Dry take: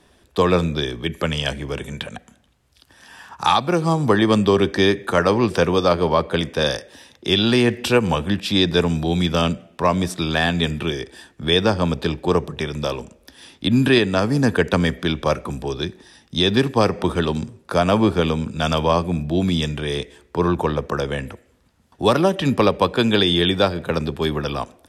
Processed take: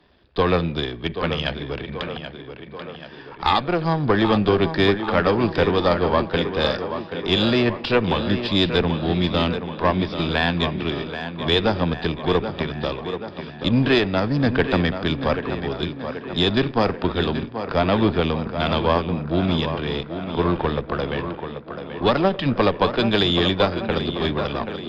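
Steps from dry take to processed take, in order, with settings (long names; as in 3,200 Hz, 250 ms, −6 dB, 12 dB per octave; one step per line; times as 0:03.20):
gain on one half-wave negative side −7 dB
downsampling to 11,025 Hz
on a send: tape delay 783 ms, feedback 66%, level −7.5 dB, low-pass 3,600 Hz
on the sum: harmonic generator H 2 −26 dB, 6 −39 dB, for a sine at −3.5 dBFS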